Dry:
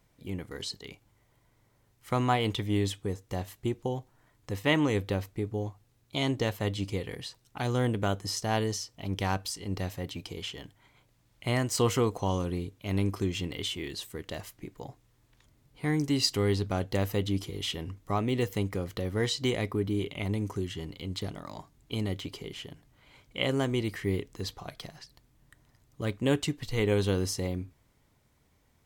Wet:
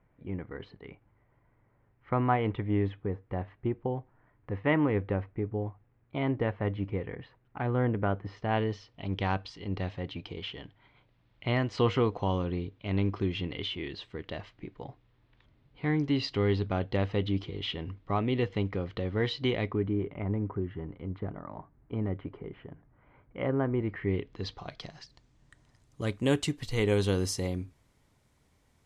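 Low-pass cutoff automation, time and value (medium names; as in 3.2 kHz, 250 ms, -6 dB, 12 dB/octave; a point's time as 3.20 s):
low-pass 24 dB/octave
8.12 s 2.1 kHz
8.99 s 3.7 kHz
19.63 s 3.7 kHz
20.04 s 1.7 kHz
23.78 s 1.7 kHz
24.46 s 4.6 kHz
26.16 s 12 kHz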